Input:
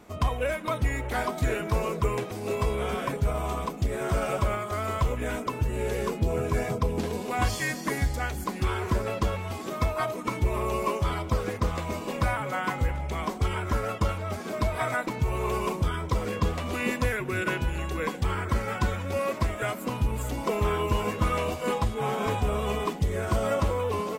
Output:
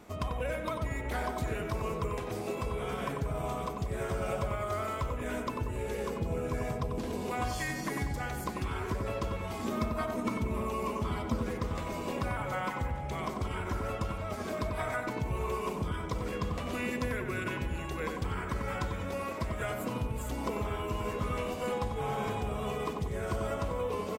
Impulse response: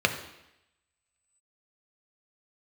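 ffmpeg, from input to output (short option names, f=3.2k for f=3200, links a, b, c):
-filter_complex "[0:a]acompressor=threshold=-31dB:ratio=4,asettb=1/sr,asplit=3[a][b][c];[a]atrim=end=9.624[d];[b]atrim=start=9.62:end=11.47,asetpts=PTS-STARTPTS,afade=t=in:d=0.004:c=qsin,afade=t=out:st=1.846:d=0.004:c=qsin,equalizer=f=230:t=o:w=0.33:g=12[e];[c]atrim=start=11.466[f];[d][e]acrossfade=d=0.004:c1=hsin:c2=qsin[g];[g][f]acrossfade=d=0.004:c1=qsin:c2=hsin,asplit=2[h][i];[i]adelay=93,lowpass=f=1.6k:p=1,volume=-3.5dB,asplit=2[j][k];[k]adelay=93,lowpass=f=1.6k:p=1,volume=0.5,asplit=2[l][m];[m]adelay=93,lowpass=f=1.6k:p=1,volume=0.5,asplit=2[n][o];[o]adelay=93,lowpass=f=1.6k:p=1,volume=0.5,asplit=2[p][q];[q]adelay=93,lowpass=f=1.6k:p=1,volume=0.5,asplit=2[r][s];[s]adelay=93,lowpass=f=1.6k:p=1,volume=0.5,asplit=2[t][u];[u]adelay=93,lowpass=f=1.6k:p=1,volume=0.5[v];[h][j][l][n][p][r][t][v]amix=inputs=8:normalize=0,volume=-1.5dB"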